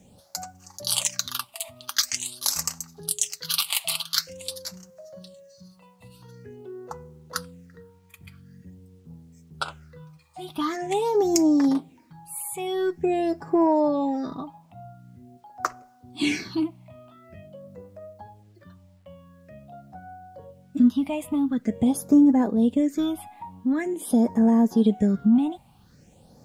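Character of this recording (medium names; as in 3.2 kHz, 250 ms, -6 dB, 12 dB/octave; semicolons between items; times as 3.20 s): phasing stages 6, 0.46 Hz, lowest notch 410–3400 Hz; a quantiser's noise floor 12-bit, dither none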